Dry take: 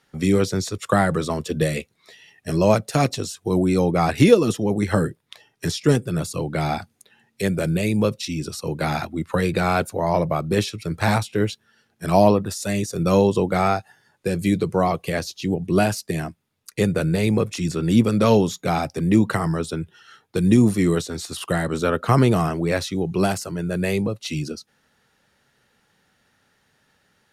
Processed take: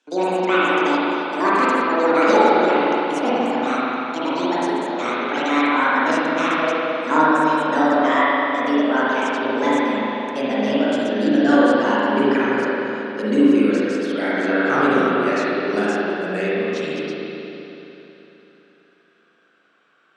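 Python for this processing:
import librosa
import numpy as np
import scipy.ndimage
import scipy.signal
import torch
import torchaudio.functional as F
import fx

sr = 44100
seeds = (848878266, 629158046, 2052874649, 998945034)

y = fx.speed_glide(x, sr, from_pct=190, to_pct=81)
y = fx.cabinet(y, sr, low_hz=240.0, low_slope=24, high_hz=7300.0, hz=(770.0, 1500.0, 4500.0), db=(-4, 5, -3))
y = fx.rev_spring(y, sr, rt60_s=3.4, pass_ms=(38, 52), chirp_ms=40, drr_db=-9.5)
y = y * 10.0 ** (-6.0 / 20.0)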